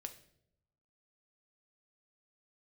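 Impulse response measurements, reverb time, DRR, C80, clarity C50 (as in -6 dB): 0.75 s, 6.5 dB, 16.0 dB, 13.0 dB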